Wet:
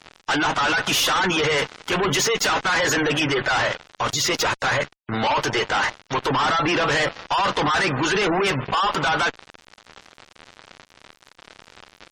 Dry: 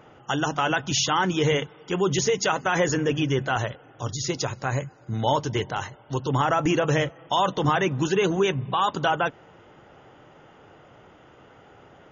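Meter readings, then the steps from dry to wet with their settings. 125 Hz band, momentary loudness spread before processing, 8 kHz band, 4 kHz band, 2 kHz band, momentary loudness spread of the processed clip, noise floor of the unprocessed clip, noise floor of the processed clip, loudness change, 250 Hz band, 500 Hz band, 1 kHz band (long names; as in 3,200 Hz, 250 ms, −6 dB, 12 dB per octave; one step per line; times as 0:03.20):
−3.5 dB, 8 LU, can't be measured, +7.0 dB, +8.0 dB, 6 LU, −52 dBFS, −61 dBFS, +3.5 dB, +0.5 dB, +0.5 dB, +3.5 dB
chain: resonant band-pass 1,600 Hz, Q 0.87
fuzz pedal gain 47 dB, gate −50 dBFS
gate on every frequency bin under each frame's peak −25 dB strong
level −5.5 dB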